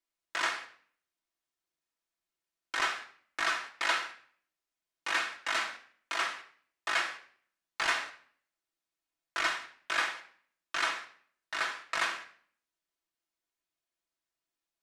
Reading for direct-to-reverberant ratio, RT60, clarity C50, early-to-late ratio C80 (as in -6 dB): -1.0 dB, 0.55 s, 11.0 dB, 14.5 dB